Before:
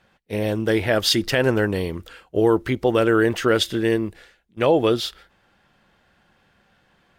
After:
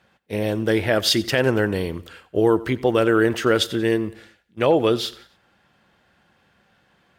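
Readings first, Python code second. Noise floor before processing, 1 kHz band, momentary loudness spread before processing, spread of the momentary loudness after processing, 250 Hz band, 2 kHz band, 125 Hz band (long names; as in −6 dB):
−63 dBFS, 0.0 dB, 10 LU, 10 LU, 0.0 dB, 0.0 dB, −0.5 dB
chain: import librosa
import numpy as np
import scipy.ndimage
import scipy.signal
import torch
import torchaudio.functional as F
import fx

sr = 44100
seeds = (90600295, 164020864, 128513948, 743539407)

p1 = scipy.signal.sosfilt(scipy.signal.butter(2, 59.0, 'highpass', fs=sr, output='sos'), x)
y = p1 + fx.echo_feedback(p1, sr, ms=91, feedback_pct=41, wet_db=-19.5, dry=0)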